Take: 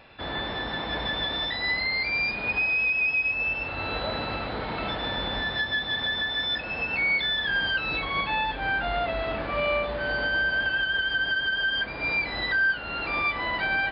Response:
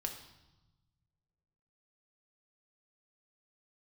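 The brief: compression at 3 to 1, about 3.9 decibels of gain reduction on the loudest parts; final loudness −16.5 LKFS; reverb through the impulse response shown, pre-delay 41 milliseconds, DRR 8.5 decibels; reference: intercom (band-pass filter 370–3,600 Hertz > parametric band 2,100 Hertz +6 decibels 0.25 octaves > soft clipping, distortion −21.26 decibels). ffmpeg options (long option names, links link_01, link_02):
-filter_complex "[0:a]acompressor=threshold=-27dB:ratio=3,asplit=2[link_01][link_02];[1:a]atrim=start_sample=2205,adelay=41[link_03];[link_02][link_03]afir=irnorm=-1:irlink=0,volume=-8.5dB[link_04];[link_01][link_04]amix=inputs=2:normalize=0,highpass=370,lowpass=3600,equalizer=frequency=2100:width_type=o:width=0.25:gain=6,asoftclip=threshold=-21.5dB,volume=12dB"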